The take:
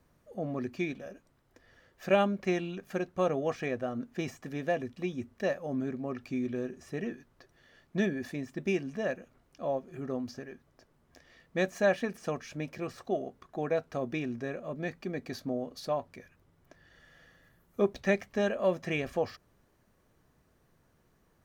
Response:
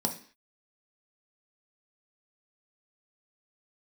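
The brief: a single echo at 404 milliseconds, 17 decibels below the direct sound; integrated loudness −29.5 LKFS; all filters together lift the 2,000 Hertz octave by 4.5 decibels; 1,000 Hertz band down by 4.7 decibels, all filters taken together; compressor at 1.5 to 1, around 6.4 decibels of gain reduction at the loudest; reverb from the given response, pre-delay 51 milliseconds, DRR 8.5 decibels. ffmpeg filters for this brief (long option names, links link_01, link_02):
-filter_complex "[0:a]equalizer=frequency=1000:width_type=o:gain=-9,equalizer=frequency=2000:width_type=o:gain=8,acompressor=threshold=-39dB:ratio=1.5,aecho=1:1:404:0.141,asplit=2[link_01][link_02];[1:a]atrim=start_sample=2205,adelay=51[link_03];[link_02][link_03]afir=irnorm=-1:irlink=0,volume=-14dB[link_04];[link_01][link_04]amix=inputs=2:normalize=0,volume=7dB"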